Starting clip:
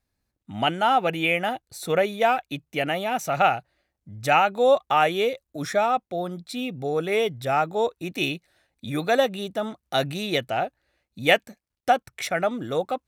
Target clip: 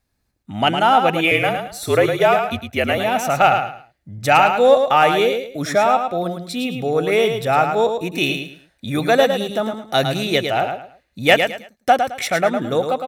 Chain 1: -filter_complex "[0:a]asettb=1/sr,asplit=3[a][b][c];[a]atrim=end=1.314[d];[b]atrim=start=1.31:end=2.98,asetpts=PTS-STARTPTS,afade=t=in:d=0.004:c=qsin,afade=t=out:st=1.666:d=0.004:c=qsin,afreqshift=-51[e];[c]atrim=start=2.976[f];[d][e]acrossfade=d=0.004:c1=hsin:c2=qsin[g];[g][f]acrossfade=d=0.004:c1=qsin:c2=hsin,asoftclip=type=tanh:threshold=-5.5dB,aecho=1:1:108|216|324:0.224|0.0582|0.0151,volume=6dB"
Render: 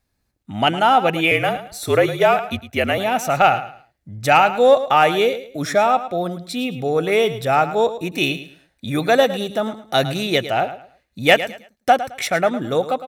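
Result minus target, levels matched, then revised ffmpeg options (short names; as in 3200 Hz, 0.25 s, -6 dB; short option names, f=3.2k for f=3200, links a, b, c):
echo-to-direct -6.5 dB
-filter_complex "[0:a]asettb=1/sr,asplit=3[a][b][c];[a]atrim=end=1.314[d];[b]atrim=start=1.31:end=2.98,asetpts=PTS-STARTPTS,afade=t=in:d=0.004:c=qsin,afade=t=out:st=1.666:d=0.004:c=qsin,afreqshift=-51[e];[c]atrim=start=2.976[f];[d][e]acrossfade=d=0.004:c1=hsin:c2=qsin[g];[g][f]acrossfade=d=0.004:c1=qsin:c2=hsin,asoftclip=type=tanh:threshold=-5.5dB,aecho=1:1:108|216|324:0.473|0.123|0.032,volume=6dB"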